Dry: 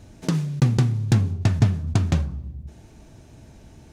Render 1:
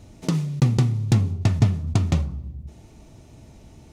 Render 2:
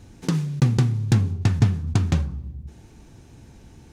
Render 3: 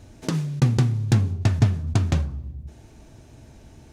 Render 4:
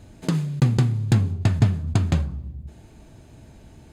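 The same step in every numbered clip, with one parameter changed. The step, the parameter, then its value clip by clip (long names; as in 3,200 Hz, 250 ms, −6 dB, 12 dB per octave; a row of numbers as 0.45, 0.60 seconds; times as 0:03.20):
notch filter, centre frequency: 1,600, 630, 180, 5,700 Hertz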